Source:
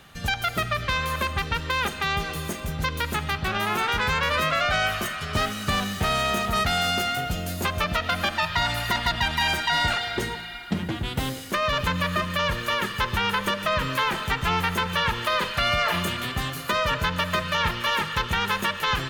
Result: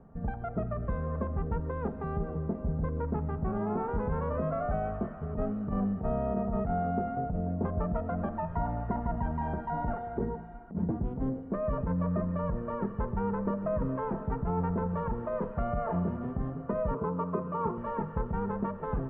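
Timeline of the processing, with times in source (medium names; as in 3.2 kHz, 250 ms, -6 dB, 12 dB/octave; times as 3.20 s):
16.94–17.78 s: cabinet simulation 170–3500 Hz, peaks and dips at 400 Hz +10 dB, 620 Hz -7 dB, 1.1 kHz +9 dB, 1.8 kHz -10 dB
whole clip: Bessel low-pass 560 Hz, order 4; comb 4.4 ms, depth 40%; compressor with a negative ratio -28 dBFS, ratio -0.5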